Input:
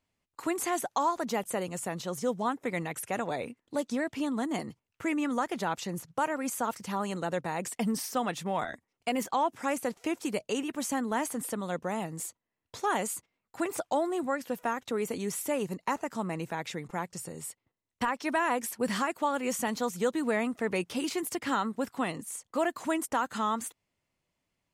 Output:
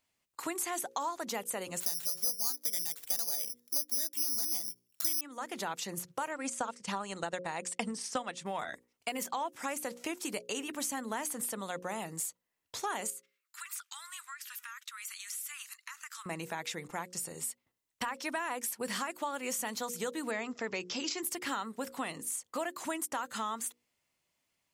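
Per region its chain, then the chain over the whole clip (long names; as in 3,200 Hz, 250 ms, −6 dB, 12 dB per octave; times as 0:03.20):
0:01.80–0:05.21: high-frequency loss of the air 150 metres + bad sample-rate conversion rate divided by 8×, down none, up zero stuff
0:06.31–0:08.46: Butterworth low-pass 9,400 Hz + transient designer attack +8 dB, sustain −7 dB
0:13.10–0:16.26: Butterworth high-pass 1,200 Hz 48 dB per octave + downward compressor 5 to 1, threshold −43 dBFS
0:20.31–0:21.23: linear-phase brick-wall low-pass 7,800 Hz + parametric band 5,300 Hz +7.5 dB 0.36 octaves
whole clip: spectral tilt +2 dB per octave; mains-hum notches 60/120/180/240/300/360/420/480/540 Hz; downward compressor 3 to 1, threshold −34 dBFS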